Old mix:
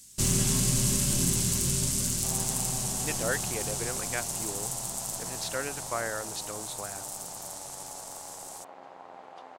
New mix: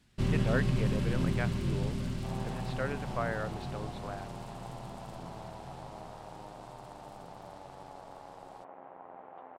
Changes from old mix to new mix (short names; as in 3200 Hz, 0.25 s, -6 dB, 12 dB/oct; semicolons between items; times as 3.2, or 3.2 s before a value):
speech: entry -2.75 s; second sound: add Gaussian blur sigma 2.9 samples; master: add air absorption 410 m